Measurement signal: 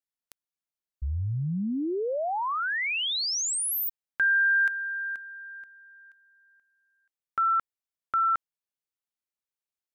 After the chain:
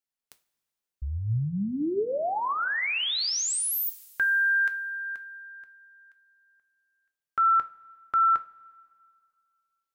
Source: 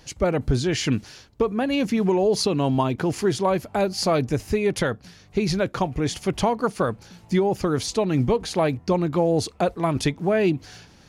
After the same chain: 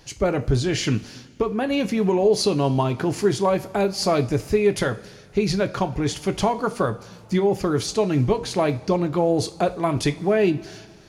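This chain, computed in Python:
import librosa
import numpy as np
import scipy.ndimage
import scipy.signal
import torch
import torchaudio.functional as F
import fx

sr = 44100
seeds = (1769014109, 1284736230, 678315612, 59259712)

y = fx.rev_double_slope(x, sr, seeds[0], early_s=0.29, late_s=2.1, knee_db=-18, drr_db=8.0)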